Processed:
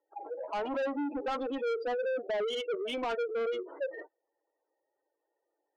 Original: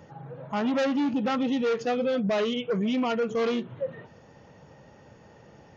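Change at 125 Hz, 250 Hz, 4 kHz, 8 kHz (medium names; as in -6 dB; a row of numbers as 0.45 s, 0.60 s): under -25 dB, -12.5 dB, -5.0 dB, no reading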